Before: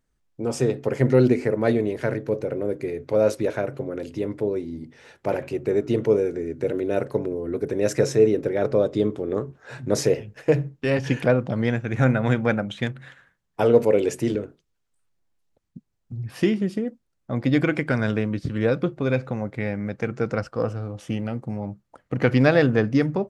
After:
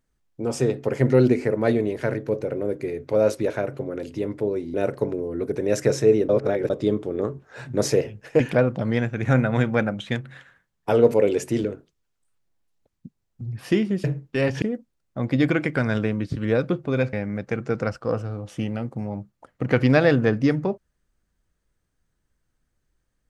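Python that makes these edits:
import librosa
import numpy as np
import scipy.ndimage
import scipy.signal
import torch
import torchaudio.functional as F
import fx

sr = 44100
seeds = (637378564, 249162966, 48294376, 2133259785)

y = fx.edit(x, sr, fx.cut(start_s=4.74, length_s=2.13),
    fx.reverse_span(start_s=8.42, length_s=0.41),
    fx.move(start_s=10.53, length_s=0.58, to_s=16.75),
    fx.cut(start_s=19.26, length_s=0.38), tone=tone)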